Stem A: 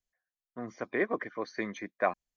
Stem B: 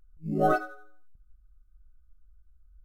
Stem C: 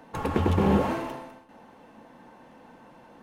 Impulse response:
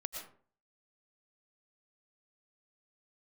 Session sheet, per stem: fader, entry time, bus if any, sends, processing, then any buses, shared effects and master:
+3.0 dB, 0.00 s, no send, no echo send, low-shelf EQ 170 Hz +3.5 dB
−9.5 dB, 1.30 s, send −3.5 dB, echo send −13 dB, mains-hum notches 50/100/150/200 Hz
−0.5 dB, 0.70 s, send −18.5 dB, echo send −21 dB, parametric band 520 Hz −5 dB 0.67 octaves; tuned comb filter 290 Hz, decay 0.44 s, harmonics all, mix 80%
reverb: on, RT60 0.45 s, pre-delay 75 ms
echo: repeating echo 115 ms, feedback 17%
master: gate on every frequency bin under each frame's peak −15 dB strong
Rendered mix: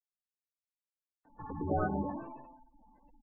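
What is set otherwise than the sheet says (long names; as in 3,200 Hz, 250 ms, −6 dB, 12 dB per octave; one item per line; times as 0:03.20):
stem A: muted
stem B: send off
stem C: entry 0.70 s → 1.25 s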